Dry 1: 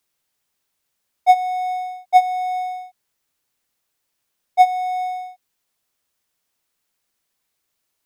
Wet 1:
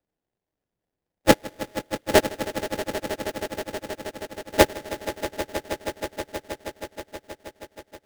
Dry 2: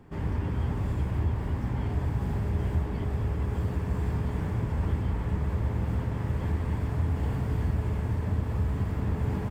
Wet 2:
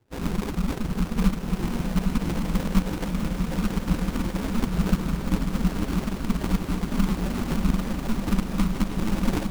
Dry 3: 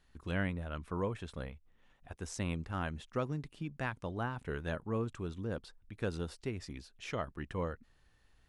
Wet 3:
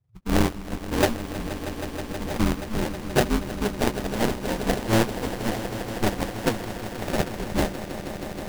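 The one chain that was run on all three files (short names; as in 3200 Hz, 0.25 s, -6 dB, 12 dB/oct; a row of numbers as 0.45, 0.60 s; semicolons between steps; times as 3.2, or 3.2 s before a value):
per-bin expansion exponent 2; reverb removal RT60 1.6 s; sample-rate reducer 1200 Hz, jitter 20%; ring modulator 110 Hz; swelling echo 0.159 s, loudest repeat 5, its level -14 dB; match loudness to -27 LUFS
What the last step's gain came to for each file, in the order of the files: +0.5, +13.5, +20.5 dB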